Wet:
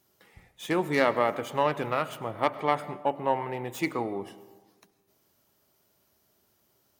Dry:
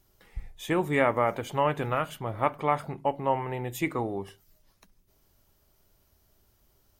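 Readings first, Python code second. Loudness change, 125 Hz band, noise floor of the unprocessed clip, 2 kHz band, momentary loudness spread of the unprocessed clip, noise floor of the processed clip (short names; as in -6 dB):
0.0 dB, -5.0 dB, -67 dBFS, +0.5 dB, 16 LU, -70 dBFS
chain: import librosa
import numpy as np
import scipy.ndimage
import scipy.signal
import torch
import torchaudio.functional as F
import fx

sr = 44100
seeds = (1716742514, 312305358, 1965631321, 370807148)

y = fx.tracing_dist(x, sr, depth_ms=0.089)
y = scipy.signal.sosfilt(scipy.signal.butter(2, 160.0, 'highpass', fs=sr, output='sos'), y)
y = fx.rev_freeverb(y, sr, rt60_s=1.3, hf_ratio=0.5, predelay_ms=65, drr_db=15.5)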